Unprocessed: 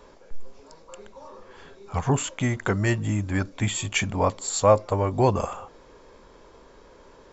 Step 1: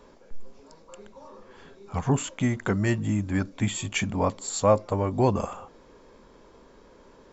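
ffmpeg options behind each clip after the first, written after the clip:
-af "equalizer=f=220:t=o:w=1.1:g=6,volume=0.668"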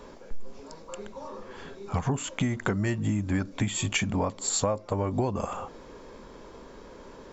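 -af "acompressor=threshold=0.0316:ratio=12,volume=2.11"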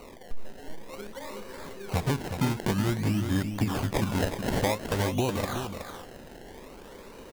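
-filter_complex "[0:a]acrusher=samples=26:mix=1:aa=0.000001:lfo=1:lforange=26:lforate=0.52,asplit=2[s0][s1];[s1]aecho=0:1:293|370:0.106|0.422[s2];[s0][s2]amix=inputs=2:normalize=0"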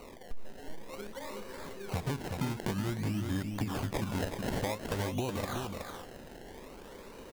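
-af "acompressor=threshold=0.0355:ratio=2.5,volume=0.75"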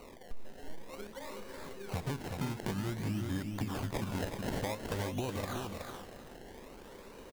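-af "aecho=1:1:319:0.237,volume=0.75"

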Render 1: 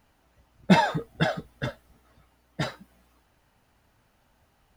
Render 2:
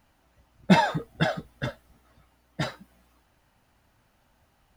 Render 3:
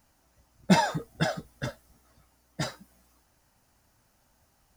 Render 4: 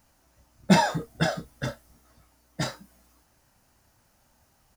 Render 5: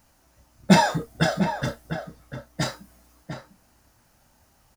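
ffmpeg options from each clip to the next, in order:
-af "bandreject=f=440:w=12"
-af "highshelf=f=4400:t=q:w=1.5:g=7,volume=0.75"
-filter_complex "[0:a]asplit=2[s0][s1];[s1]adelay=30,volume=0.335[s2];[s0][s2]amix=inputs=2:normalize=0,volume=1.26"
-filter_complex "[0:a]asplit=2[s0][s1];[s1]adelay=699.7,volume=0.398,highshelf=f=4000:g=-15.7[s2];[s0][s2]amix=inputs=2:normalize=0,volume=1.41"

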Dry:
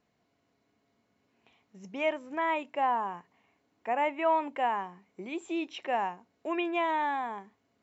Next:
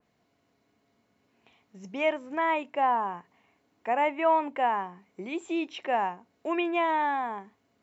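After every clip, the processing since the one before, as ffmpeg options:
-af "adynamicequalizer=threshold=0.00398:dfrequency=3000:dqfactor=0.7:tfrequency=3000:tqfactor=0.7:attack=5:release=100:ratio=0.375:range=3:mode=cutabove:tftype=highshelf,volume=1.41"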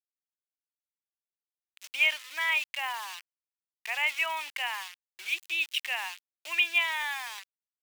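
-af "aeval=exprs='val(0)*gte(abs(val(0)),0.00944)':c=same,highpass=f=2700:t=q:w=1.8,volume=2.11"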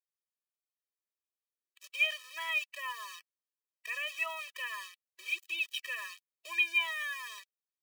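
-af "afftfilt=real='re*eq(mod(floor(b*sr/1024/330),2),1)':imag='im*eq(mod(floor(b*sr/1024/330),2),1)':win_size=1024:overlap=0.75,volume=0.75"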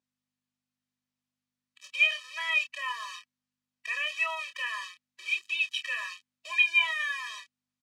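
-filter_complex "[0:a]aeval=exprs='val(0)+0.000316*(sin(2*PI*50*n/s)+sin(2*PI*2*50*n/s)/2+sin(2*PI*3*50*n/s)/3+sin(2*PI*4*50*n/s)/4+sin(2*PI*5*50*n/s)/5)':c=same,highpass=620,lowpass=6800,asplit=2[s0][s1];[s1]adelay=28,volume=0.422[s2];[s0][s2]amix=inputs=2:normalize=0,volume=1.78"

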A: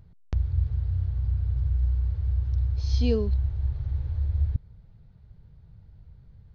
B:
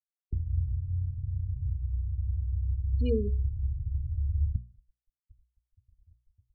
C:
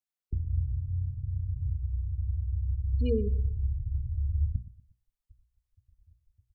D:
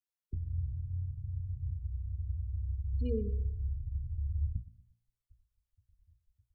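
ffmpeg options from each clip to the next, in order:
-af "afftfilt=real='re*gte(hypot(re,im),0.0562)':imag='im*gte(hypot(re,im),0.0562)':win_size=1024:overlap=0.75,bandreject=f=60:t=h:w=6,bandreject=f=120:t=h:w=6,bandreject=f=180:t=h:w=6,bandreject=f=240:t=h:w=6,bandreject=f=300:t=h:w=6,bandreject=f=360:t=h:w=6,bandreject=f=420:t=h:w=6,volume=0.75"
-filter_complex "[0:a]asplit=2[s0][s1];[s1]adelay=119,lowpass=f=1400:p=1,volume=0.141,asplit=2[s2][s3];[s3]adelay=119,lowpass=f=1400:p=1,volume=0.38,asplit=2[s4][s5];[s5]adelay=119,lowpass=f=1400:p=1,volume=0.38[s6];[s0][s2][s4][s6]amix=inputs=4:normalize=0"
-filter_complex "[0:a]bandreject=f=58.86:t=h:w=4,bandreject=f=117.72:t=h:w=4,bandreject=f=176.58:t=h:w=4,bandreject=f=235.44:t=h:w=4,bandreject=f=294.3:t=h:w=4,bandreject=f=353.16:t=h:w=4,bandreject=f=412.02:t=h:w=4,bandreject=f=470.88:t=h:w=4,bandreject=f=529.74:t=h:w=4,bandreject=f=588.6:t=h:w=4,bandreject=f=647.46:t=h:w=4,bandreject=f=706.32:t=h:w=4,bandreject=f=765.18:t=h:w=4,bandreject=f=824.04:t=h:w=4,bandreject=f=882.9:t=h:w=4,bandreject=f=941.76:t=h:w=4,bandreject=f=1000.62:t=h:w=4,bandreject=f=1059.48:t=h:w=4,bandreject=f=1118.34:t=h:w=4,bandreject=f=1177.2:t=h:w=4,bandreject=f=1236.06:t=h:w=4,bandreject=f=1294.92:t=h:w=4,acrossover=split=140|620[s0][s1][s2];[s2]alimiter=level_in=9.44:limit=0.0631:level=0:latency=1:release=112,volume=0.106[s3];[s0][s1][s3]amix=inputs=3:normalize=0,volume=0.562"

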